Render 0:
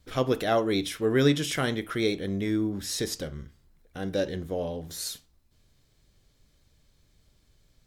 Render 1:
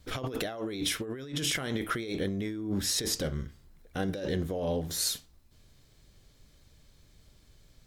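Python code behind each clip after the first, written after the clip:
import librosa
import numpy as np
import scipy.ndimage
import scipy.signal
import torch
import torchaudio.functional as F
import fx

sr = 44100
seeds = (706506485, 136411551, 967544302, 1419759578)

y = fx.over_compress(x, sr, threshold_db=-33.0, ratio=-1.0)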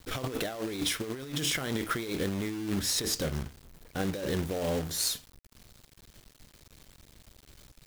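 y = fx.quant_companded(x, sr, bits=4)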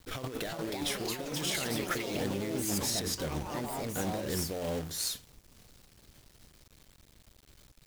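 y = fx.echo_pitch(x, sr, ms=400, semitones=4, count=3, db_per_echo=-3.0)
y = y * librosa.db_to_amplitude(-4.0)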